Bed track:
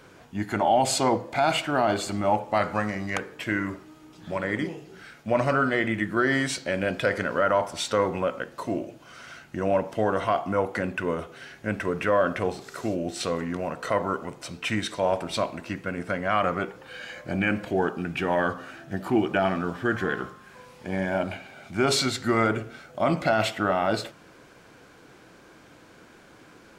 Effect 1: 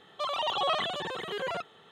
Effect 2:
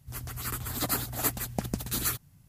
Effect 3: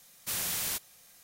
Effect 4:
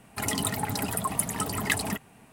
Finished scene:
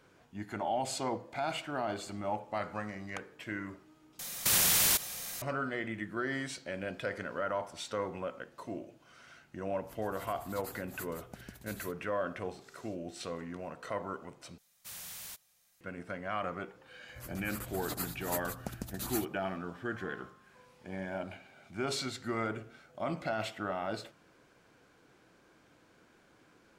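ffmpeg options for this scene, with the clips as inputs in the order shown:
-filter_complex "[3:a]asplit=2[s0][s1];[2:a]asplit=2[s2][s3];[0:a]volume=0.251[s4];[s0]alimiter=level_in=42.2:limit=0.891:release=50:level=0:latency=1[s5];[s1]equalizer=f=330:t=o:w=0.78:g=-8.5[s6];[s4]asplit=3[s7][s8][s9];[s7]atrim=end=4.194[s10];[s5]atrim=end=1.23,asetpts=PTS-STARTPTS,volume=0.158[s11];[s8]atrim=start=5.416:end=14.584[s12];[s6]atrim=end=1.23,asetpts=PTS-STARTPTS,volume=0.237[s13];[s9]atrim=start=15.806[s14];[s2]atrim=end=2.48,asetpts=PTS-STARTPTS,volume=0.133,afade=t=in:d=0.004:c=hsin,afade=t=out:st=2.476:d=0.004:c=hsin,adelay=9750[s15];[s3]atrim=end=2.48,asetpts=PTS-STARTPTS,volume=0.355,afade=t=in:d=0.004:c=hsin,afade=t=out:st=2.476:d=0.004:c=hsin,adelay=17080[s16];[s10][s11]acrossfade=d=0.004:c1=hsin:c2=hsin[s17];[s17][s12]acrossfade=d=0.004:c1=hsin:c2=hsin[s18];[s18][s13]acrossfade=d=0.004:c1=hsin:c2=hsin[s19];[s19][s14]acrossfade=d=0.004:c1=hsin:c2=hsin[s20];[s20][s15][s16]amix=inputs=3:normalize=0"

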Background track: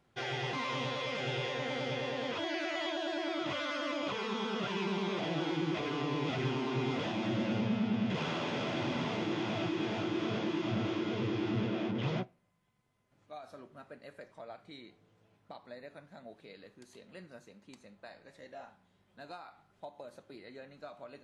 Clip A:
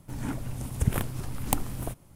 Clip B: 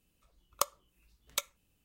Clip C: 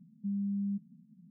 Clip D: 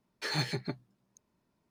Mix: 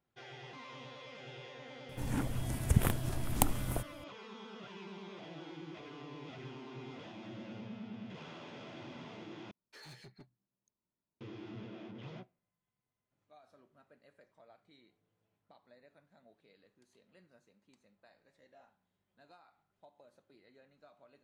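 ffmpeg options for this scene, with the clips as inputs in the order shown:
-filter_complex "[0:a]volume=0.2[s0];[4:a]volume=35.5,asoftclip=hard,volume=0.0282[s1];[s0]asplit=2[s2][s3];[s2]atrim=end=9.514[s4];[s1]atrim=end=1.7,asetpts=PTS-STARTPTS,volume=0.126[s5];[s3]atrim=start=11.206[s6];[1:a]atrim=end=2.15,asetpts=PTS-STARTPTS,volume=0.794,afade=t=in:d=0.004:c=hsin,afade=t=out:st=2.146:d=0.004:c=hsin,adelay=1890[s7];[s4][s5]acrossfade=d=0.004:c1=hsin:c2=hsin[s8];[s8][s6]acrossfade=d=0.004:c1=hsin:c2=hsin[s9];[s9][s7]amix=inputs=2:normalize=0"

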